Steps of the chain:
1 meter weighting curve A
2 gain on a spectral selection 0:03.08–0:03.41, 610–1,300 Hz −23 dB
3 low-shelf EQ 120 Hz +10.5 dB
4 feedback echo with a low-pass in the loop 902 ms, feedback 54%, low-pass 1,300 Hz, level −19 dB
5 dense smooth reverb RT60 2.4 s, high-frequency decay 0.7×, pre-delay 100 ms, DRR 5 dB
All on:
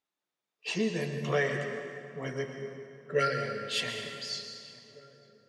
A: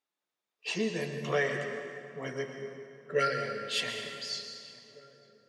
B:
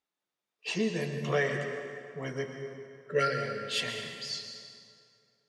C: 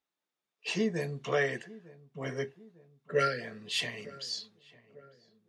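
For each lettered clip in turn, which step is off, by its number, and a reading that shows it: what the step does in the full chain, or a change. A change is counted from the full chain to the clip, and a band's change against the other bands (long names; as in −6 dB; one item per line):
3, 125 Hz band −4.0 dB
4, change in momentary loudness spread −1 LU
5, 125 Hz band −1.5 dB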